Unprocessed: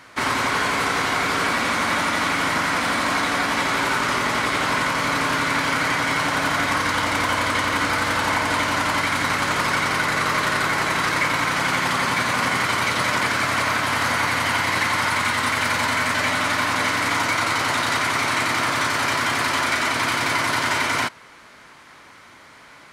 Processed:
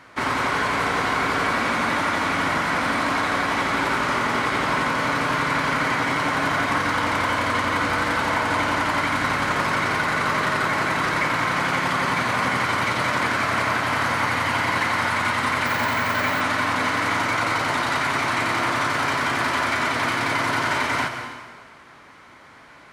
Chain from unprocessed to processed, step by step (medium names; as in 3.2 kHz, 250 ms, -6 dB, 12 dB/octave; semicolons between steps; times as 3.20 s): treble shelf 3.1 kHz -8.5 dB; on a send at -7 dB: reverberation RT60 1.5 s, pre-delay 120 ms; 15.66–16.41 s: on the sum: careless resampling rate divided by 2×, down none, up hold